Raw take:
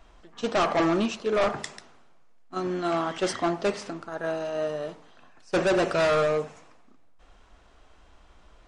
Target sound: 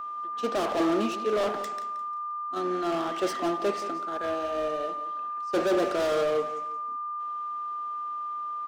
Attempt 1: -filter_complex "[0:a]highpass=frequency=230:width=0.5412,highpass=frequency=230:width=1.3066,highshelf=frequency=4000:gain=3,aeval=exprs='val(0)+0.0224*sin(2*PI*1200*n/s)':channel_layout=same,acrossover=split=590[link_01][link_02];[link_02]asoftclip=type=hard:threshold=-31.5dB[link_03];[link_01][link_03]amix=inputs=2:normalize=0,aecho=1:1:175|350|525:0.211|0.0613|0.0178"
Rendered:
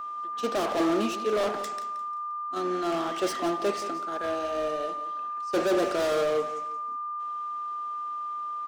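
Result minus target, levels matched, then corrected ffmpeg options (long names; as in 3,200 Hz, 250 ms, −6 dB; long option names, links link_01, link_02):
8,000 Hz band +3.0 dB
-filter_complex "[0:a]highpass=frequency=230:width=0.5412,highpass=frequency=230:width=1.3066,highshelf=frequency=4000:gain=-4,aeval=exprs='val(0)+0.0224*sin(2*PI*1200*n/s)':channel_layout=same,acrossover=split=590[link_01][link_02];[link_02]asoftclip=type=hard:threshold=-31.5dB[link_03];[link_01][link_03]amix=inputs=2:normalize=0,aecho=1:1:175|350|525:0.211|0.0613|0.0178"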